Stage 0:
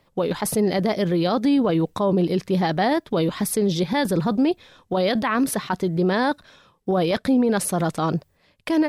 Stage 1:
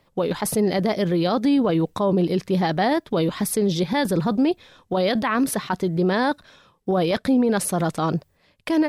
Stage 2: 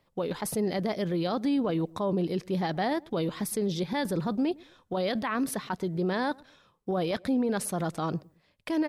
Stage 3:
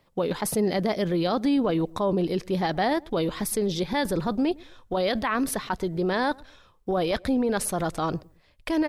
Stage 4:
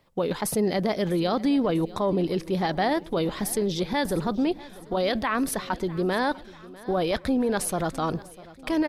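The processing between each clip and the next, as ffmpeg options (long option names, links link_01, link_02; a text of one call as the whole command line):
ffmpeg -i in.wav -af anull out.wav
ffmpeg -i in.wav -filter_complex "[0:a]asplit=2[link_01][link_02];[link_02]adelay=110,lowpass=frequency=840:poles=1,volume=-23dB,asplit=2[link_03][link_04];[link_04]adelay=110,lowpass=frequency=840:poles=1,volume=0.29[link_05];[link_01][link_03][link_05]amix=inputs=3:normalize=0,volume=-8dB" out.wav
ffmpeg -i in.wav -af "asubboost=boost=8.5:cutoff=54,volume=5dB" out.wav
ffmpeg -i in.wav -af "aecho=1:1:647|1294|1941|2588:0.1|0.055|0.0303|0.0166" out.wav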